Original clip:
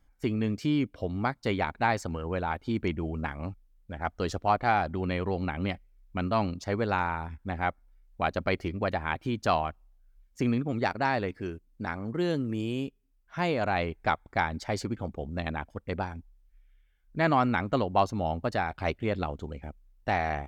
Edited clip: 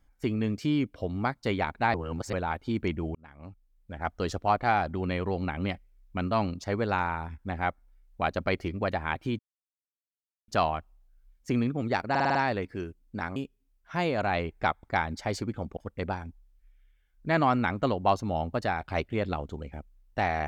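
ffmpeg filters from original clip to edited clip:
-filter_complex "[0:a]asplit=12[s0][s1][s2][s3][s4][s5][s6][s7][s8][s9][s10][s11];[s0]atrim=end=1.942[s12];[s1]atrim=start=1.938:end=2.332,asetpts=PTS-STARTPTS,areverse[s13];[s2]atrim=start=2.328:end=3.15,asetpts=PTS-STARTPTS,afade=t=out:st=0.818:d=0.004:c=hsin[s14];[s3]atrim=start=3.15:end=9.39,asetpts=PTS-STARTPTS,afade=t=in:d=0.91,afade=t=out:st=6.236:d=0.004:c=hsin,apad=pad_dur=1.09[s15];[s4]atrim=start=9.39:end=11.062,asetpts=PTS-STARTPTS,afade=t=in:d=0.004:c=hsin[s16];[s5]atrim=start=11.008:end=11.062[s17];[s6]atrim=start=11.008:end=11.062[s18];[s7]atrim=start=11.008:end=11.062[s19];[s8]atrim=start=11.008:end=11.062[s20];[s9]atrim=start=11.008:end=12.022[s21];[s10]atrim=start=12.788:end=15.202[s22];[s11]atrim=start=15.668[s23];[s12][s13]acrossfade=d=0.004:c1=hsin:c2=hsin[s24];[s14][s15][s16]concat=n=3:v=0:a=1[s25];[s24][s25]acrossfade=d=0.004:c1=hsin:c2=hsin[s26];[s26][s17]acrossfade=d=0.004:c1=hsin:c2=hsin[s27];[s27][s18]acrossfade=d=0.004:c1=hsin:c2=hsin[s28];[s28][s19]acrossfade=d=0.004:c1=hsin:c2=hsin[s29];[s29][s20]acrossfade=d=0.004:c1=hsin:c2=hsin[s30];[s30][s21]acrossfade=d=0.004:c1=hsin:c2=hsin[s31];[s31][s22]acrossfade=d=0.004:c1=hsin:c2=hsin[s32];[s32][s23]acrossfade=d=0.004:c1=hsin:c2=hsin"

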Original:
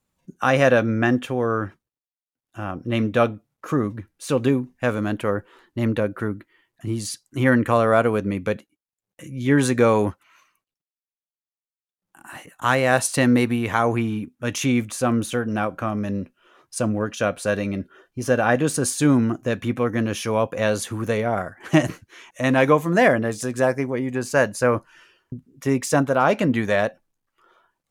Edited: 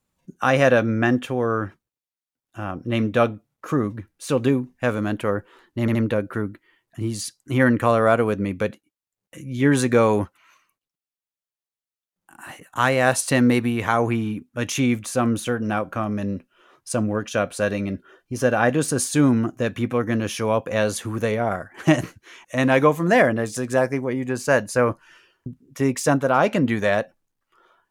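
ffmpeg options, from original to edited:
-filter_complex "[0:a]asplit=3[s0][s1][s2];[s0]atrim=end=5.882[s3];[s1]atrim=start=5.808:end=5.882[s4];[s2]atrim=start=5.808[s5];[s3][s4]acrossfade=d=0.004:c1=hsin:c2=hsin[s6];[s6][s5]acrossfade=d=0.004:c1=hsin:c2=hsin"

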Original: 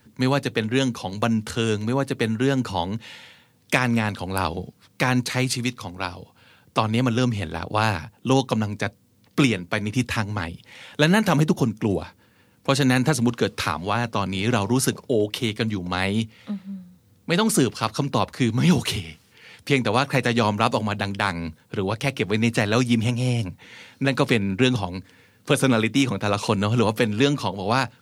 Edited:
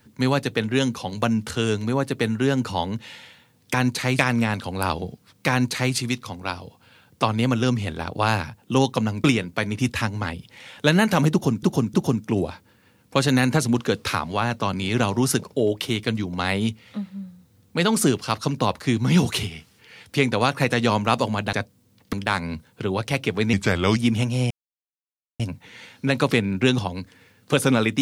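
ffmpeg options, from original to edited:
-filter_complex "[0:a]asplit=11[s0][s1][s2][s3][s4][s5][s6][s7][s8][s9][s10];[s0]atrim=end=3.742[s11];[s1]atrim=start=5.048:end=5.502[s12];[s2]atrim=start=3.738:end=8.792[s13];[s3]atrim=start=9.388:end=11.782[s14];[s4]atrim=start=11.468:end=11.782[s15];[s5]atrim=start=11.468:end=21.062[s16];[s6]atrim=start=8.788:end=9.392[s17];[s7]atrim=start=21.058:end=22.464[s18];[s8]atrim=start=22.46:end=22.83,asetpts=PTS-STARTPTS,asetrate=37485,aresample=44100,atrim=end_sample=19196,asetpts=PTS-STARTPTS[s19];[s9]atrim=start=22.826:end=23.37,asetpts=PTS-STARTPTS,afade=t=out:st=0.54:d=0.004:c=hsin,apad=pad_dur=0.89[s20];[s10]atrim=start=23.37,asetpts=PTS-STARTPTS,afade=t=in:d=0.004:c=hsin[s21];[s11][s12]acrossfade=d=0.004:c1=hsin:c2=hsin[s22];[s22][s13]acrossfade=d=0.004:c1=hsin:c2=hsin[s23];[s23][s14]acrossfade=d=0.004:c1=hsin:c2=hsin[s24];[s24][s15]acrossfade=d=0.004:c1=hsin:c2=hsin[s25];[s25][s16]acrossfade=d=0.004:c1=hsin:c2=hsin[s26];[s26][s17]acrossfade=d=0.004:c1=hsin:c2=hsin[s27];[s27][s18]acrossfade=d=0.004:c1=hsin:c2=hsin[s28];[s28][s19]acrossfade=d=0.004:c1=hsin:c2=hsin[s29];[s20][s21]concat=n=2:v=0:a=1[s30];[s29][s30]acrossfade=d=0.004:c1=hsin:c2=hsin"

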